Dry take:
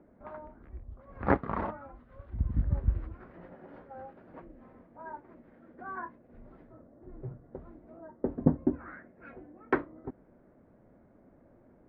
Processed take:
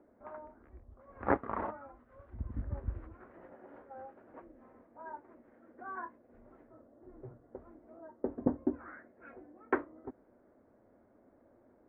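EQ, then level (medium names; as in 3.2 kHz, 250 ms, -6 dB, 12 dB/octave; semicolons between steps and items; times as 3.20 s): low-pass 2.1 kHz 12 dB/octave; bass shelf 87 Hz -11.5 dB; peaking EQ 160 Hz -13 dB 0.49 oct; -2.0 dB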